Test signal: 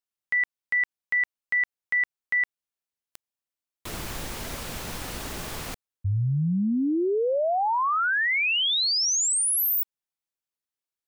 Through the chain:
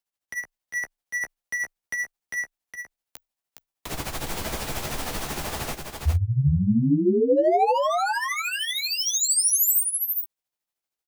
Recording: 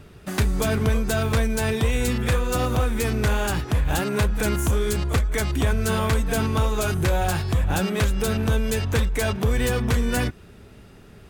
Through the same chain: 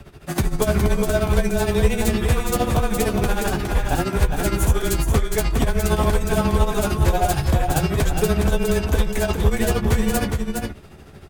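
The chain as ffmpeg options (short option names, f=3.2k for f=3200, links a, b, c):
-filter_complex "[0:a]acrossover=split=710|7400[a][b][c];[b]asoftclip=type=hard:threshold=-32dB[d];[a][d][c]amix=inputs=3:normalize=0,tremolo=f=13:d=0.79,equalizer=f=760:t=o:w=0.56:g=4,afreqshift=-21,asplit=2[e][f];[f]adelay=14,volume=-9.5dB[g];[e][g]amix=inputs=2:normalize=0,asplit=2[h][i];[i]aecho=0:1:413:0.562[j];[h][j]amix=inputs=2:normalize=0,volume=5.5dB"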